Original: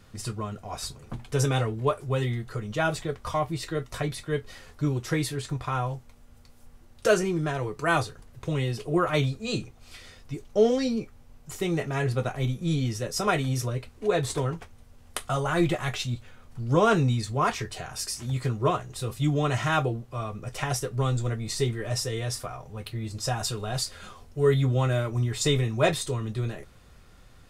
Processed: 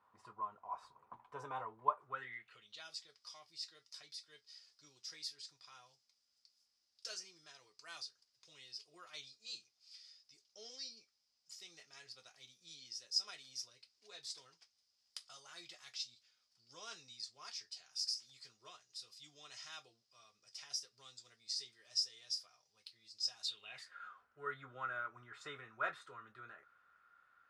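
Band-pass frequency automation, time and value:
band-pass, Q 7.6
1.98 s 990 Hz
2.86 s 5000 Hz
23.38 s 5000 Hz
23.96 s 1400 Hz

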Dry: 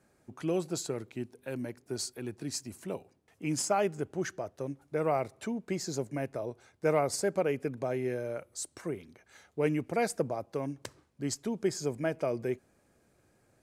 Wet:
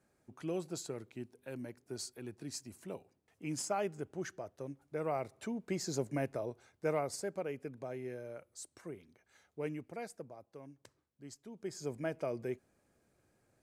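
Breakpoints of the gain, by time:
5.09 s -7 dB
6.17 s -0.5 dB
7.34 s -10 dB
9.62 s -10 dB
10.24 s -17 dB
11.47 s -17 dB
11.91 s -6 dB

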